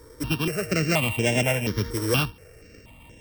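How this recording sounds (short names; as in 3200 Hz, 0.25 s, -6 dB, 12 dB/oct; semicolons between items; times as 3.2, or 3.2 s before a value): a buzz of ramps at a fixed pitch in blocks of 16 samples; notches that jump at a steady rate 4.2 Hz 730–4400 Hz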